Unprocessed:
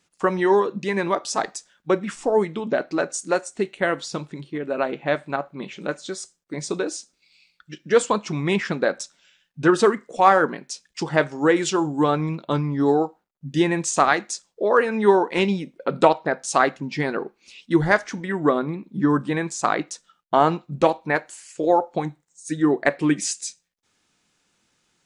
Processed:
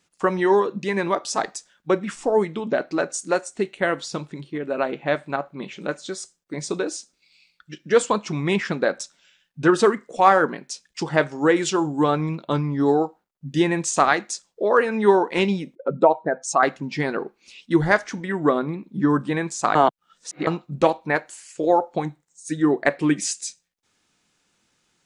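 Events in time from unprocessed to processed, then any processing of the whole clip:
15.75–16.63 s: spectral contrast enhancement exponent 1.7
19.75–20.47 s: reverse

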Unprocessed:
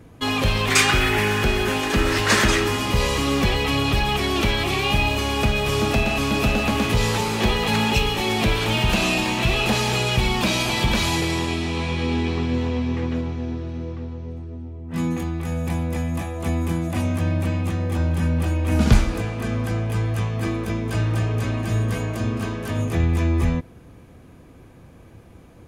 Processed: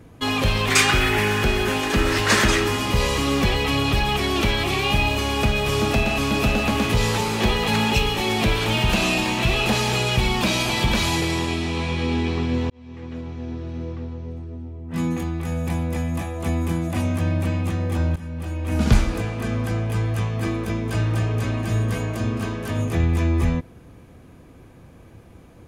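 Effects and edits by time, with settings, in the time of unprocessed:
12.70–13.83 s: fade in
18.16–19.06 s: fade in, from -16 dB

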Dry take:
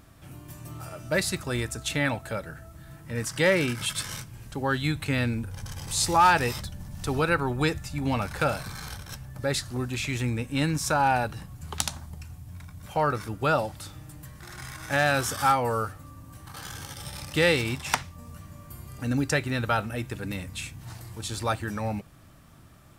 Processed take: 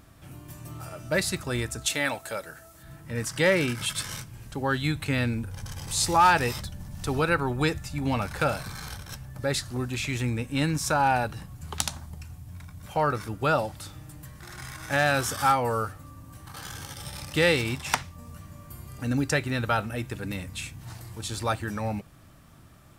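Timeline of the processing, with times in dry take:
1.86–2.83 s: tone controls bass -12 dB, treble +7 dB

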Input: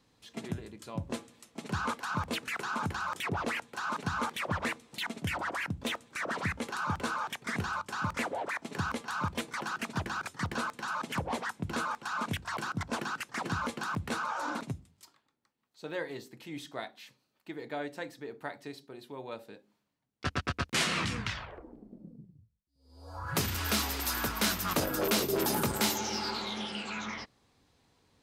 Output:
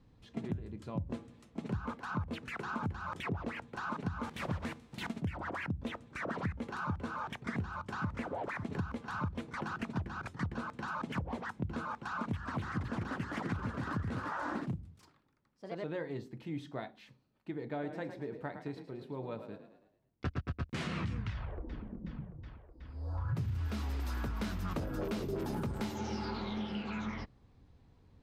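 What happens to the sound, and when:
1.77–2.68 s: three bands expanded up and down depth 40%
4.23–5.19 s: formants flattened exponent 0.6
7.33–8.08 s: echo throw 550 ms, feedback 50%, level -15.5 dB
11.93–15.98 s: ever faster or slower copies 301 ms, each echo +2 st, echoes 2
17.70–20.44 s: frequency-shifting echo 108 ms, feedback 47%, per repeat +36 Hz, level -10 dB
21.32–21.83 s: echo throw 370 ms, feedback 80%, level -11.5 dB
23.27–23.68 s: peaking EQ 120 Hz +12 dB
26.25–26.93 s: peaking EQ 7.9 kHz -15 dB 0.31 oct
whole clip: RIAA curve playback; compression 6:1, threshold -31 dBFS; trim -2.5 dB

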